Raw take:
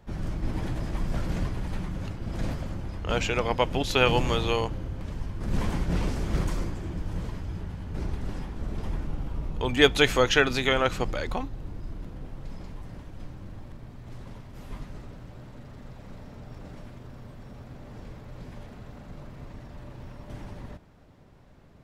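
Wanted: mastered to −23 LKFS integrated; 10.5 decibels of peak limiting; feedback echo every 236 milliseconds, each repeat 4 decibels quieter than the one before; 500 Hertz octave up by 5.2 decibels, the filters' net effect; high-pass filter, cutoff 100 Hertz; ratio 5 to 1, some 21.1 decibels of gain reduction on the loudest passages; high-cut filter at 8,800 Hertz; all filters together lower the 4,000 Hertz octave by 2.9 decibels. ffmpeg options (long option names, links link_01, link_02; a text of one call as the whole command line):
ffmpeg -i in.wav -af "highpass=100,lowpass=8800,equalizer=frequency=500:width_type=o:gain=6,equalizer=frequency=4000:width_type=o:gain=-4,acompressor=threshold=-35dB:ratio=5,alimiter=level_in=7dB:limit=-24dB:level=0:latency=1,volume=-7dB,aecho=1:1:236|472|708|944|1180|1416|1652|1888|2124:0.631|0.398|0.25|0.158|0.0994|0.0626|0.0394|0.0249|0.0157,volume=17.5dB" out.wav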